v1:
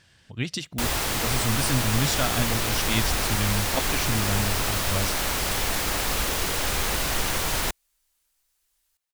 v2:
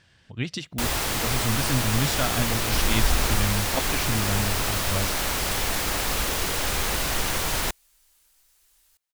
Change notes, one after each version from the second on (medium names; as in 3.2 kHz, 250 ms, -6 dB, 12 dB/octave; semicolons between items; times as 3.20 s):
speech: add treble shelf 7.4 kHz -10.5 dB; second sound +10.0 dB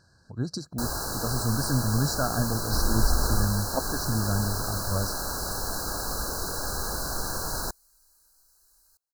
first sound -4.5 dB; master: add brick-wall FIR band-stop 1.7–3.9 kHz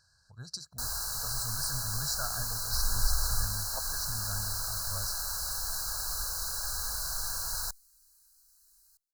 master: add amplifier tone stack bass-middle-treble 10-0-10